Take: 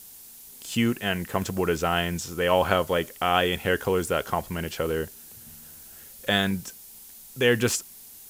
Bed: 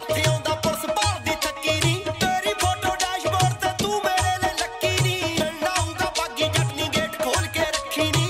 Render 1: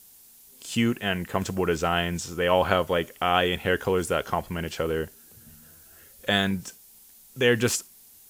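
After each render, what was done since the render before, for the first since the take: noise print and reduce 6 dB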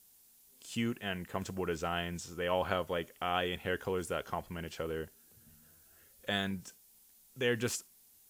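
gain -10.5 dB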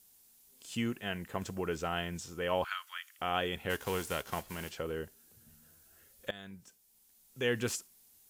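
2.64–3.19 steep high-pass 1200 Hz; 3.69–4.7 spectral whitening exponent 0.6; 6.31–7.47 fade in, from -19 dB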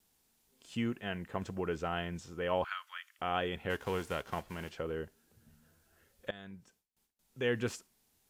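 gate with hold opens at -55 dBFS; LPF 2500 Hz 6 dB/oct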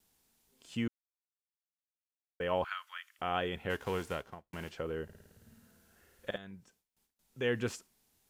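0.88–2.4 mute; 4.07–4.53 studio fade out; 5.04–6.38 flutter echo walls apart 9.2 m, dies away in 1.3 s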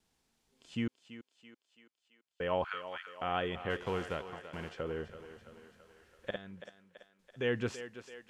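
air absorption 59 m; on a send: thinning echo 0.333 s, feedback 60%, high-pass 310 Hz, level -11 dB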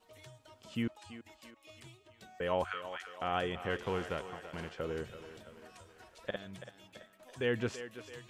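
add bed -34 dB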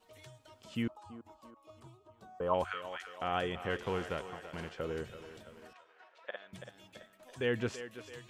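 0.88–2.54 resonant high shelf 1500 Hz -9.5 dB, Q 3; 5.73–6.53 BPF 680–2700 Hz

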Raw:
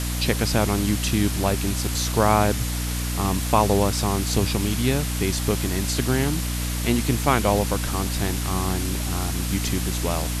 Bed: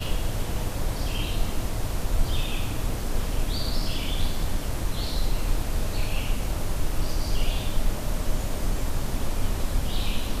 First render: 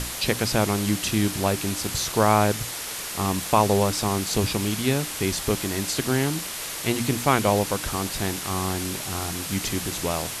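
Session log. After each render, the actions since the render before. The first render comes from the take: notches 60/120/180/240/300 Hz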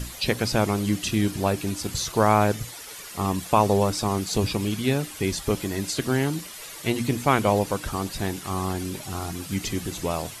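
denoiser 11 dB, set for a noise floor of -33 dBFS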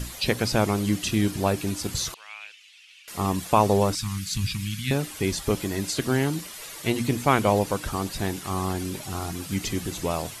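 2.14–3.08 ladder band-pass 2900 Hz, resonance 70%; 3.95–4.91 Chebyshev band-stop 150–1900 Hz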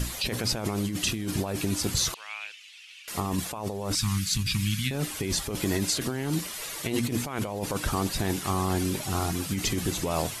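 negative-ratio compressor -28 dBFS, ratio -1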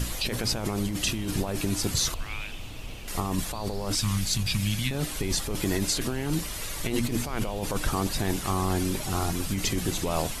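add bed -12 dB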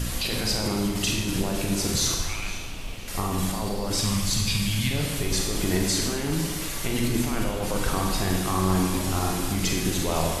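echo with dull and thin repeats by turns 0.252 s, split 2400 Hz, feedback 54%, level -11.5 dB; Schroeder reverb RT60 1.1 s, combs from 33 ms, DRR 0.5 dB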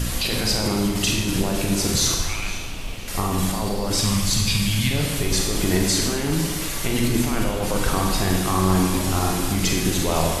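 gain +4 dB

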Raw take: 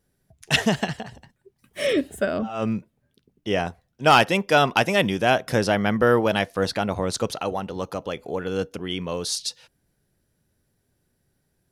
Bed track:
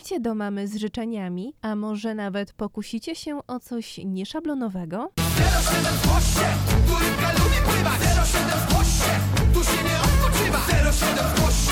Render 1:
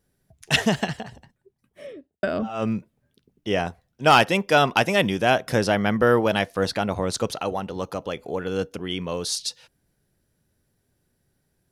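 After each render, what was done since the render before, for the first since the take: 0.94–2.23 studio fade out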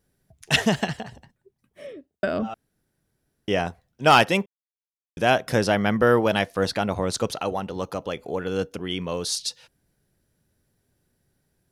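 2.54–3.48 room tone; 4.46–5.17 mute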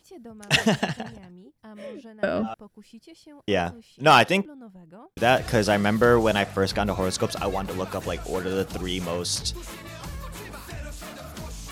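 add bed track -17.5 dB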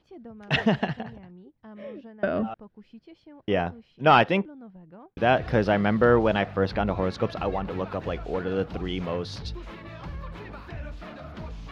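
air absorption 310 m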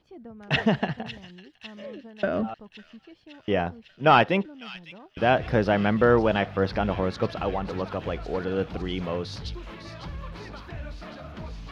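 thin delay 0.553 s, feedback 70%, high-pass 3500 Hz, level -8 dB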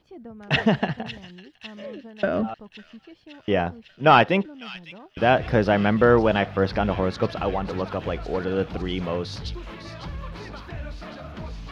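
gain +2.5 dB

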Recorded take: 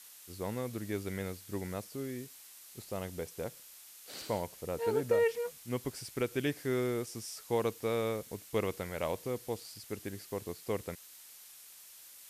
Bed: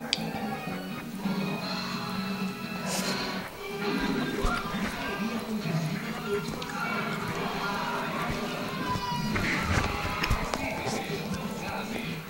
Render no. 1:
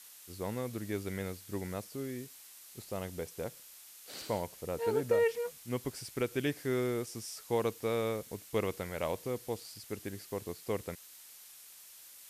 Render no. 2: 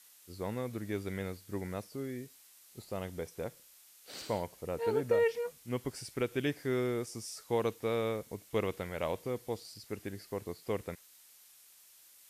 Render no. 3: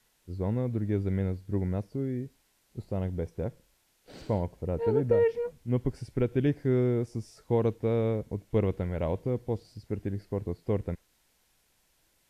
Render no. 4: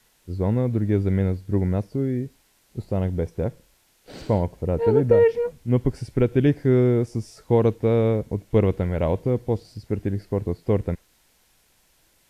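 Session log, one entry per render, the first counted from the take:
nothing audible
noise print and reduce 6 dB
tilt -4 dB/oct; notch 1200 Hz, Q 9.3
gain +7.5 dB

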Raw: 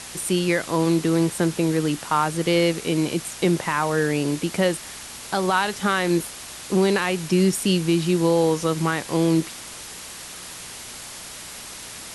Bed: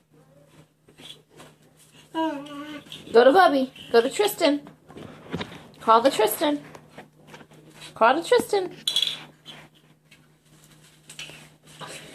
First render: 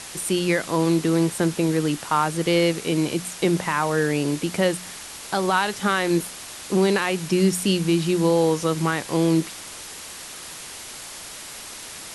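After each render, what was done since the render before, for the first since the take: de-hum 60 Hz, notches 4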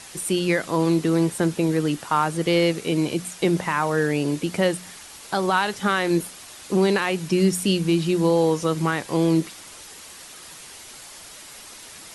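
denoiser 6 dB, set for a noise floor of -38 dBFS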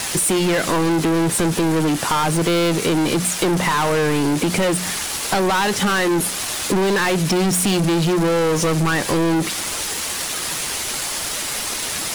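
sample leveller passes 5; compressor, threshold -17 dBFS, peak gain reduction 6.5 dB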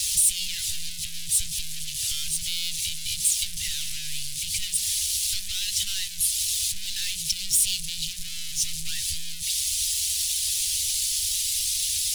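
inverse Chebyshev band-stop 280–980 Hz, stop band 70 dB; bell 1000 Hz +2 dB 1.5 oct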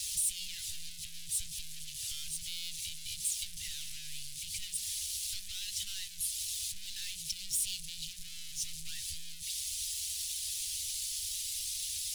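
gain -11.5 dB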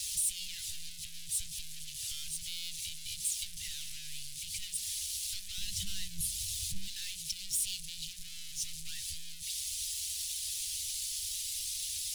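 5.58–6.88 resonant low shelf 250 Hz +11 dB, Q 3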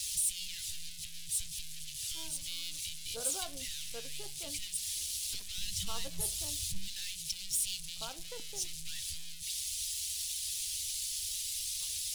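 add bed -30 dB

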